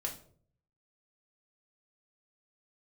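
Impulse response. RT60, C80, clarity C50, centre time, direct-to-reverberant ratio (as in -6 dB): 0.55 s, 15.0 dB, 10.5 dB, 16 ms, -0.5 dB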